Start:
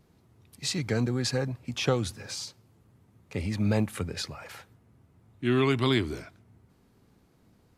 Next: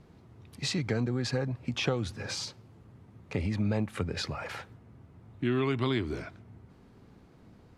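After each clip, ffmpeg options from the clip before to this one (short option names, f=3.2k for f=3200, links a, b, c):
-af "aemphasis=mode=reproduction:type=50fm,acompressor=threshold=-37dB:ratio=2.5,volume=6.5dB"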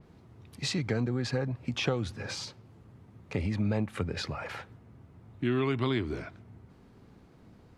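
-af "adynamicequalizer=threshold=0.00282:dfrequency=4000:dqfactor=0.7:tfrequency=4000:tqfactor=0.7:attack=5:release=100:ratio=0.375:range=2.5:mode=cutabove:tftype=highshelf"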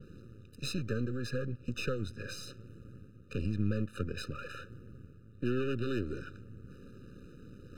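-af "aeval=exprs='if(lt(val(0),0),0.251*val(0),val(0))':c=same,areverse,acompressor=mode=upward:threshold=-39dB:ratio=2.5,areverse,afftfilt=real='re*eq(mod(floor(b*sr/1024/600),2),0)':imag='im*eq(mod(floor(b*sr/1024/600),2),0)':win_size=1024:overlap=0.75"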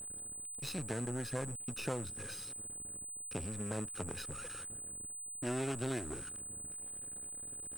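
-af "aeval=exprs='sgn(val(0))*max(abs(val(0))-0.00447,0)':c=same,aeval=exprs='val(0)+0.00562*sin(2*PI*8100*n/s)':c=same,aeval=exprs='(tanh(56.2*val(0)+0.8)-tanh(0.8))/56.2':c=same,volume=7.5dB"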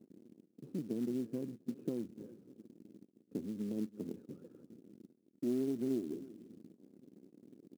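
-af "asuperpass=centerf=270:order=4:qfactor=1.5,aecho=1:1:332:0.119,acrusher=bits=6:mode=log:mix=0:aa=0.000001,volume=5.5dB"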